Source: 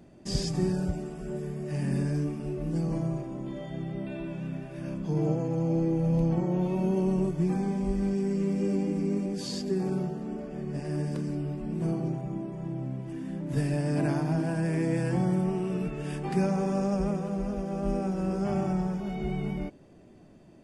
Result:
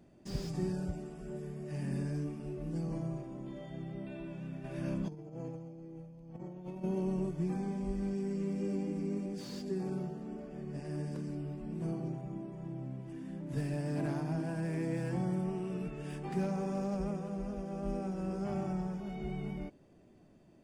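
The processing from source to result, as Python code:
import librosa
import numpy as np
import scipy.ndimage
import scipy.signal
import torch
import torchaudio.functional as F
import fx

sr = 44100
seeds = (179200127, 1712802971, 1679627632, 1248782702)

y = fx.over_compress(x, sr, threshold_db=-33.0, ratio=-0.5, at=(4.64, 6.84))
y = fx.slew_limit(y, sr, full_power_hz=39.0)
y = y * librosa.db_to_amplitude(-7.5)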